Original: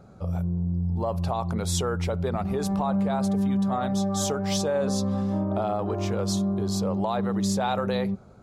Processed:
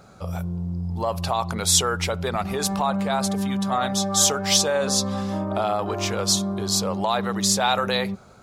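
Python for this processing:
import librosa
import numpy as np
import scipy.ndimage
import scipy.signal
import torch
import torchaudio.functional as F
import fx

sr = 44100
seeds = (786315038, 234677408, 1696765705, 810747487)

y = fx.tilt_shelf(x, sr, db=-7.5, hz=900.0)
y = y * 10.0 ** (5.5 / 20.0)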